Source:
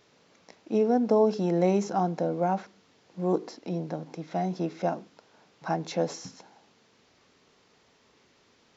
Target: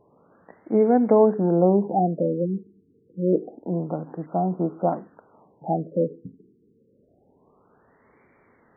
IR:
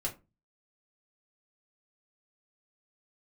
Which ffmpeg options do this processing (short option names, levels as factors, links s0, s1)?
-filter_complex "[0:a]asettb=1/sr,asplit=3[s0][s1][s2];[s0]atrim=end=4.264[s3];[s1]atrim=start=4.26:end=4.93,asetpts=PTS-STARTPTS,afade=t=in:d=0.004:c=qsin,afade=t=out:st=0.666:d=0.004:c=qsin,asuperstop=centerf=2500:order=20:qfactor=0.82[s4];[s2]atrim=start=4.926[s5];[s3][s4]acrossfade=d=0.004:c1=hsin:c2=qsin[s6];[s6][s5]acrossfade=d=0.004:c1=qsin:c2=hsin,afftfilt=real='re*lt(b*sr/1024,460*pow(2400/460,0.5+0.5*sin(2*PI*0.27*pts/sr)))':imag='im*lt(b*sr/1024,460*pow(2400/460,0.5+0.5*sin(2*PI*0.27*pts/sr)))':win_size=1024:overlap=0.75,volume=1.88"